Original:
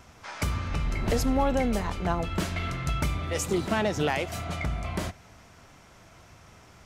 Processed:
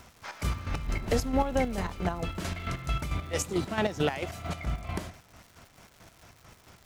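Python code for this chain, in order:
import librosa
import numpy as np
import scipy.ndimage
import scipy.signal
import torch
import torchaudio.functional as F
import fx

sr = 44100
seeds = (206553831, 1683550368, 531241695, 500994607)

y = fx.chopper(x, sr, hz=4.5, depth_pct=60, duty_pct=40)
y = fx.dmg_crackle(y, sr, seeds[0], per_s=320.0, level_db=-44.0)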